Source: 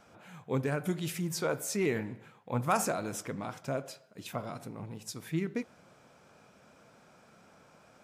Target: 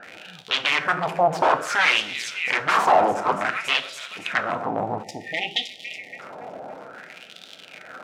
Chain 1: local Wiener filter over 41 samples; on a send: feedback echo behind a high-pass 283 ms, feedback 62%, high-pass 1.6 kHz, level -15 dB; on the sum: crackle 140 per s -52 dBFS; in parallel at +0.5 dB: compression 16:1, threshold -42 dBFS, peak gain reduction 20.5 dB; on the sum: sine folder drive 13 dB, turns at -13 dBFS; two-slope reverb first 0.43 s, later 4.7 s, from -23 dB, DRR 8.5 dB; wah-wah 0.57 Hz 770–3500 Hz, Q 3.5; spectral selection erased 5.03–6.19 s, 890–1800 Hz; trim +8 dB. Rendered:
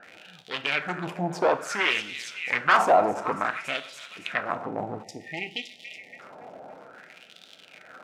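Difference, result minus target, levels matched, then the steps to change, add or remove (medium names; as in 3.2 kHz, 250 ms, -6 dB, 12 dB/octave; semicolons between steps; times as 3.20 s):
sine folder: distortion -13 dB
change: sine folder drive 20 dB, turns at -13 dBFS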